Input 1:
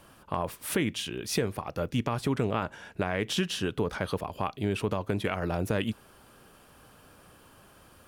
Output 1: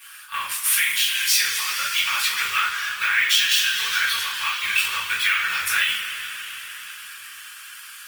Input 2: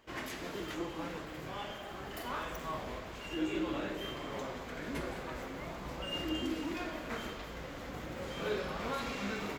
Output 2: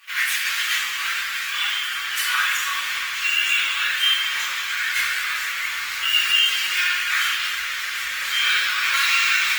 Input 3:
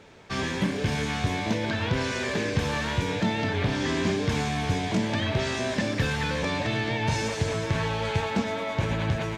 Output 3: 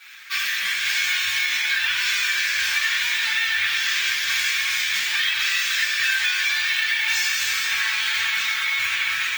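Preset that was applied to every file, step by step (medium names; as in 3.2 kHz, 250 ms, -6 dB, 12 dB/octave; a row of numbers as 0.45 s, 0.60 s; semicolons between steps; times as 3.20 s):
in parallel at -9 dB: short-mantissa float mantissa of 2-bit; on the sum: flange 1.3 Hz, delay 3.3 ms, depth 8.9 ms, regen -55%; inverse Chebyshev high-pass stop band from 750 Hz, stop band 40 dB; careless resampling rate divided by 2×, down none, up hold; two-slope reverb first 0.37 s, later 4.7 s, from -18 dB, DRR -9.5 dB; compression 2.5:1, threshold -30 dBFS; Opus 24 kbps 48 kHz; normalise loudness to -20 LUFS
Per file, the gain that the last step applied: +13.0 dB, +17.0 dB, +9.0 dB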